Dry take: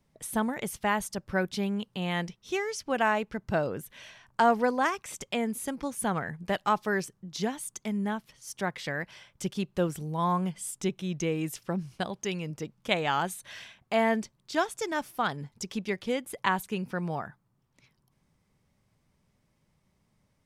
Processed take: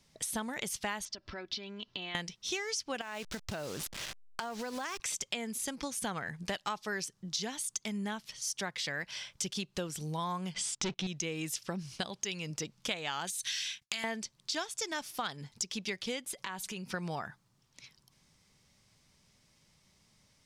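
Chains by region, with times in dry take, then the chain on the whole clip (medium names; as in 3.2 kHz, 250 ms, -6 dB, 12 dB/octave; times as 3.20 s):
1.05–2.15 s: low-pass 4.9 kHz 24 dB/octave + comb 3 ms, depth 57% + compression 5:1, threshold -43 dBFS
3.01–5.00 s: send-on-delta sampling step -41 dBFS + compression 10:1, threshold -34 dBFS
10.54–11.07 s: waveshaping leveller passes 3 + distance through air 110 m
13.27–14.04 s: expander -54 dBFS + FFT filter 210 Hz 0 dB, 550 Hz -12 dB, 1.7 kHz +6 dB, 5.6 kHz +13 dB + compression 4:1, threshold -34 dBFS
16.32–16.94 s: compression 4:1, threshold -43 dBFS + comb 5.3 ms, depth 36%
whole clip: de-esser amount 65%; peaking EQ 5.2 kHz +15 dB 2.4 oct; compression 5:1, threshold -34 dBFS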